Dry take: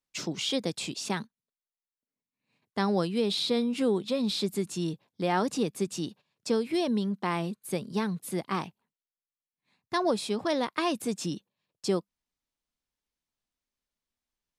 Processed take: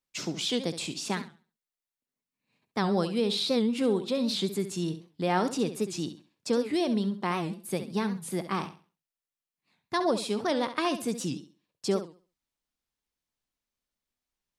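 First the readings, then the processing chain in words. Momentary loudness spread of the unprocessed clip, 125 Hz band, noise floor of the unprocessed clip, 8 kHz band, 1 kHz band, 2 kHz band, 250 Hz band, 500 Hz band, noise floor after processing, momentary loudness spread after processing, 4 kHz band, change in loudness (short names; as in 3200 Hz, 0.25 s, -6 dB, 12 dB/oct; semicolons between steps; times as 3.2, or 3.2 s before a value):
8 LU, +0.5 dB, under -85 dBFS, +0.5 dB, +0.5 dB, +0.5 dB, +0.5 dB, +0.5 dB, under -85 dBFS, 8 LU, +0.5 dB, +0.5 dB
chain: flutter echo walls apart 11.6 m, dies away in 0.36 s; record warp 78 rpm, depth 160 cents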